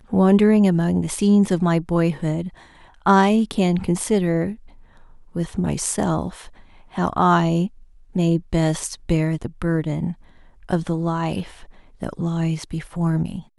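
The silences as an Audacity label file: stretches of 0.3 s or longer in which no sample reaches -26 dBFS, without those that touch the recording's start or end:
2.480000	3.060000	silence
4.530000	5.360000	silence
6.290000	6.980000	silence
7.670000	8.160000	silence
10.120000	10.690000	silence
11.430000	12.020000	silence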